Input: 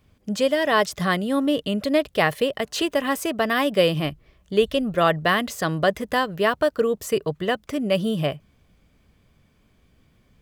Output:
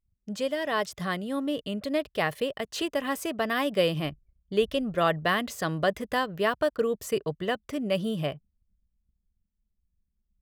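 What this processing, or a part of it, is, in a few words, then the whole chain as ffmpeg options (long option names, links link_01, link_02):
voice memo with heavy noise removal: -af "anlmdn=0.0398,dynaudnorm=framelen=380:gausssize=13:maxgain=5dB,volume=-8.5dB"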